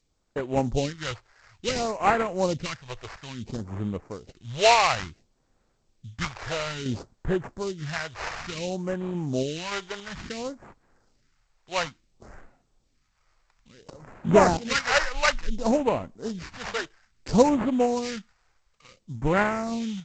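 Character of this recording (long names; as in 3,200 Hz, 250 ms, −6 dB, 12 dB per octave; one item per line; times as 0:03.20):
aliases and images of a low sample rate 3,400 Hz, jitter 20%
phaser sweep stages 2, 0.58 Hz, lowest notch 210–4,900 Hz
sample-and-hold tremolo
G.722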